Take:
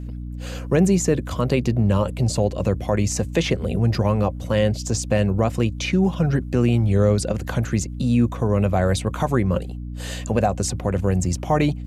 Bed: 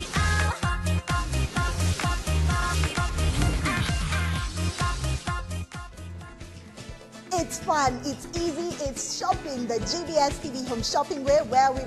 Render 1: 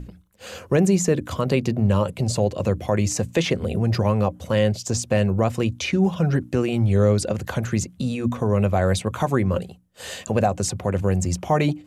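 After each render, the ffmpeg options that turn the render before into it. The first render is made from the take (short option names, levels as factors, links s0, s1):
-af "bandreject=f=60:t=h:w=6,bandreject=f=120:t=h:w=6,bandreject=f=180:t=h:w=6,bandreject=f=240:t=h:w=6,bandreject=f=300:t=h:w=6"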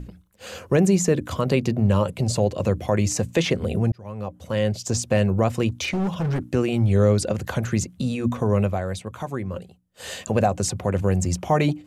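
-filter_complex "[0:a]asettb=1/sr,asplit=3[s0][s1][s2];[s0]atrim=end=5.694[s3];[s1]atrim=start=5.69:end=6.44,asetpts=PTS-STARTPTS,afade=t=in:d=0.004:c=qsin,afade=t=out:st=0.746:d=0.004:c=qsin,asoftclip=type=hard:threshold=0.0891[s4];[s2]atrim=start=6.436[s5];[s3][s4]acrossfade=d=0.004:c1=hsin:c2=qsin[s6];[s6][s5]acrossfade=d=0.004:c1=qsin:c2=hsin,asplit=4[s7][s8][s9][s10];[s7]atrim=end=3.92,asetpts=PTS-STARTPTS,afade=t=out:st=3.916:d=0.004:c=hsin[s11];[s8]atrim=start=3.92:end=8.84,asetpts=PTS-STARTPTS,afade=t=in:d=1,afade=t=out:st=4.65:d=0.27:silence=0.375837[s12];[s9]atrim=start=8.84:end=9.82,asetpts=PTS-STARTPTS,volume=0.376[s13];[s10]atrim=start=9.82,asetpts=PTS-STARTPTS,afade=t=in:d=0.27:silence=0.375837[s14];[s11][s12][s13][s14]concat=n=4:v=0:a=1"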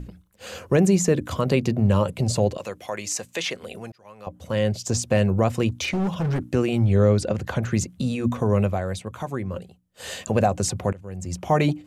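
-filter_complex "[0:a]asettb=1/sr,asplit=3[s0][s1][s2];[s0]atrim=end=2.574[s3];[s1]atrim=start=2.57:end=4.27,asetpts=PTS-STARTPTS,afade=t=in:d=0.004:c=qsin,afade=t=out:st=1.696:d=0.004:c=qsin,highpass=f=1300:p=1[s4];[s2]atrim=start=4.266[s5];[s3][s4]acrossfade=d=0.004:c1=hsin:c2=qsin[s6];[s6][s5]acrossfade=d=0.004:c1=qsin:c2=hsin,asettb=1/sr,asplit=3[s7][s8][s9];[s7]atrim=end=6.854[s10];[s8]atrim=start=6.85:end=7.74,asetpts=PTS-STARTPTS,afade=t=in:d=0.004:c=qsin,afade=t=out:st=0.886:d=0.004:c=qsin,highshelf=f=7200:g=-10.5[s11];[s9]atrim=start=7.736[s12];[s10][s11]acrossfade=d=0.004:c1=hsin:c2=qsin[s13];[s13][s12]acrossfade=d=0.004:c1=qsin:c2=hsin,asplit=2[s14][s15];[s14]atrim=end=10.93,asetpts=PTS-STARTPTS,afade=t=out:st=10.926:d=0.004:c=hsin:silence=0.1[s16];[s15]atrim=start=10.93,asetpts=PTS-STARTPTS,afade=t=in:d=0.59:c=qua:silence=0.1[s17];[s16][s17]concat=n=2:v=0:a=1"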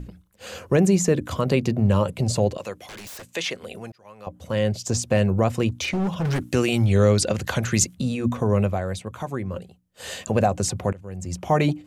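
-filter_complex "[0:a]asettb=1/sr,asplit=3[s0][s1][s2];[s0]atrim=end=2.864[s3];[s1]atrim=start=2.86:end=3.28,asetpts=PTS-STARTPTS,afade=t=in:d=0.004:c=qsin,afade=t=out:st=0.416:d=0.004:c=qsin,aeval=exprs='0.02*(abs(mod(val(0)/0.02+3,4)-2)-1)':c=same[s4];[s2]atrim=start=3.276[s5];[s3][s4]acrossfade=d=0.004:c1=hsin:c2=qsin[s6];[s6][s5]acrossfade=d=0.004:c1=qsin:c2=hsin,asettb=1/sr,asplit=3[s7][s8][s9];[s7]atrim=end=6.254[s10];[s8]atrim=start=6.25:end=7.95,asetpts=PTS-STARTPTS,afade=t=in:d=0.004:c=qsin,afade=t=out:st=1.696:d=0.004:c=qsin,highshelf=f=2000:g=11.5[s11];[s9]atrim=start=7.946[s12];[s10][s11]acrossfade=d=0.004:c1=hsin:c2=qsin[s13];[s13][s12]acrossfade=d=0.004:c1=qsin:c2=hsin"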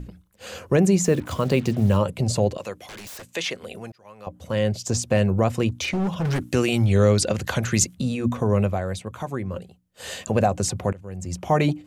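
-filter_complex "[0:a]asettb=1/sr,asplit=3[s0][s1][s2];[s0]atrim=end=1.034[s3];[s1]atrim=start=1.03:end=1.97,asetpts=PTS-STARTPTS,afade=t=in:d=0.004:c=qsin,afade=t=out:st=0.936:d=0.004:c=qsin,acrusher=bits=6:mix=0:aa=0.5[s4];[s2]atrim=start=1.966[s5];[s3][s4]acrossfade=d=0.004:c1=hsin:c2=qsin[s6];[s6][s5]acrossfade=d=0.004:c1=qsin:c2=hsin"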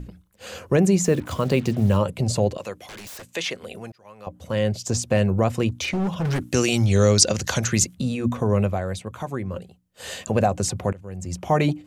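-filter_complex "[0:a]asettb=1/sr,asplit=3[s0][s1][s2];[s0]atrim=end=6.544[s3];[s1]atrim=start=6.54:end=7.68,asetpts=PTS-STARTPTS,afade=t=in:d=0.004:c=qsin,afade=t=out:st=1.136:d=0.004:c=qsin,equalizer=f=5900:t=o:w=0.84:g=13[s4];[s2]atrim=start=7.676[s5];[s3][s4]acrossfade=d=0.004:c1=hsin:c2=qsin[s6];[s6][s5]acrossfade=d=0.004:c1=qsin:c2=hsin"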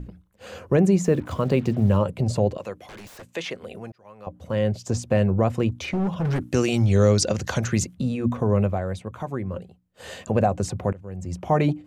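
-af "highshelf=f=2600:g=-10"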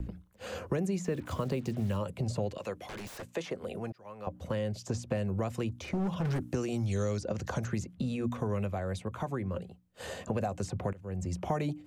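-filter_complex "[0:a]acrossover=split=1500|4700[s0][s1][s2];[s0]acompressor=threshold=0.0282:ratio=4[s3];[s1]acompressor=threshold=0.00447:ratio=4[s4];[s2]acompressor=threshold=0.00631:ratio=4[s5];[s3][s4][s5]amix=inputs=3:normalize=0,acrossover=split=250|460|1600[s6][s7][s8][s9];[s9]alimiter=level_in=3.98:limit=0.0631:level=0:latency=1:release=230,volume=0.251[s10];[s6][s7][s8][s10]amix=inputs=4:normalize=0"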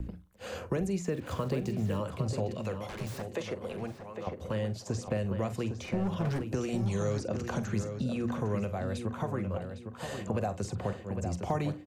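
-filter_complex "[0:a]asplit=2[s0][s1];[s1]adelay=46,volume=0.224[s2];[s0][s2]amix=inputs=2:normalize=0,asplit=2[s3][s4];[s4]adelay=807,lowpass=f=3000:p=1,volume=0.447,asplit=2[s5][s6];[s6]adelay=807,lowpass=f=3000:p=1,volume=0.33,asplit=2[s7][s8];[s8]adelay=807,lowpass=f=3000:p=1,volume=0.33,asplit=2[s9][s10];[s10]adelay=807,lowpass=f=3000:p=1,volume=0.33[s11];[s3][s5][s7][s9][s11]amix=inputs=5:normalize=0"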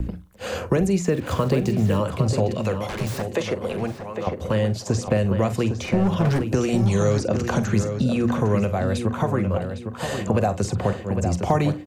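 -af "volume=3.55"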